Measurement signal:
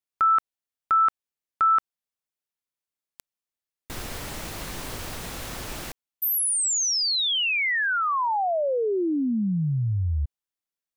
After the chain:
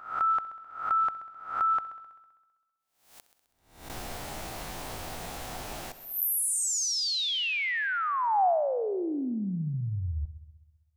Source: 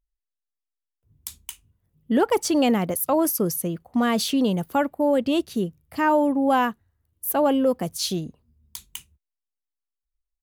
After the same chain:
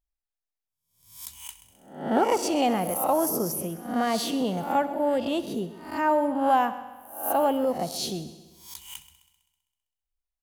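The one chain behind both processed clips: reverse spectral sustain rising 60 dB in 0.54 s; peaking EQ 750 Hz +8.5 dB 0.56 oct; multi-head delay 65 ms, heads first and second, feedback 57%, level -18 dB; trim -7 dB

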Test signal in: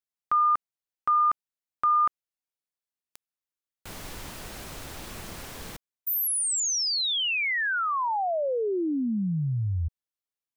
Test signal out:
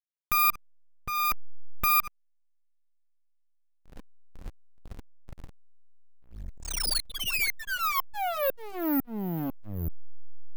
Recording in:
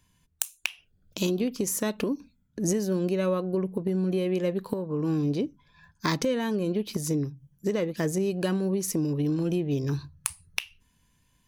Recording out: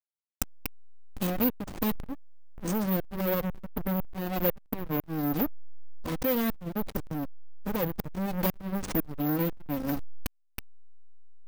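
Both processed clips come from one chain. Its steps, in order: comb filter that takes the minimum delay 3.9 ms; careless resampling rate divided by 3×, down filtered, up zero stuff; tremolo saw up 2 Hz, depth 90%; hysteresis with a dead band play -21.5 dBFS

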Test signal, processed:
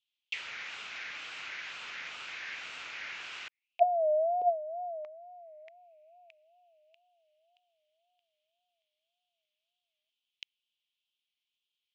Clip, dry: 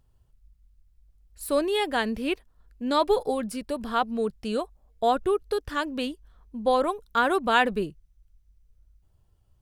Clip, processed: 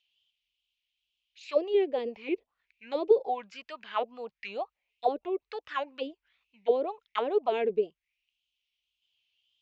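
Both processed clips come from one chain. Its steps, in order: resonant high shelf 1.9 kHz +8.5 dB, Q 3; resampled via 16 kHz; wow and flutter 140 cents; auto-wah 410–3200 Hz, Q 5.4, down, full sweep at -18.5 dBFS; trim +5.5 dB

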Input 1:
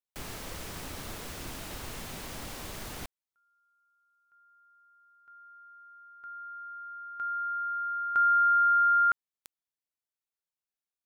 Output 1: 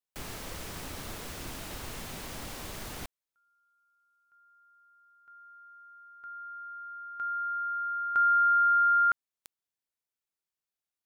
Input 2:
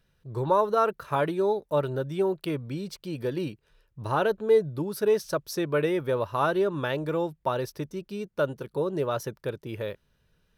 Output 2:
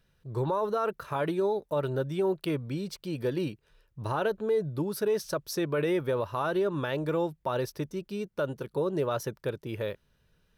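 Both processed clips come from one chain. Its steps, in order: peak limiter -20 dBFS

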